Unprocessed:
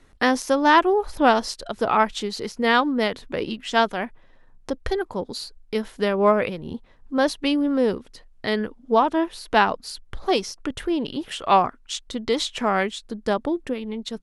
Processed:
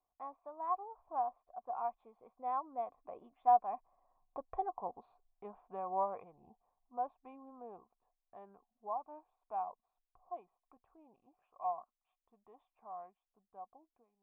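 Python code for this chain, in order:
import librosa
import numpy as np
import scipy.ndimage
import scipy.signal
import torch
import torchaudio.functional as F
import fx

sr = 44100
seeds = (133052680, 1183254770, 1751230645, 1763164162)

y = fx.fade_out_tail(x, sr, length_s=0.8)
y = fx.doppler_pass(y, sr, speed_mps=27, closest_m=22.0, pass_at_s=4.61)
y = fx.formant_cascade(y, sr, vowel='a')
y = y * 10.0 ** (2.0 / 20.0)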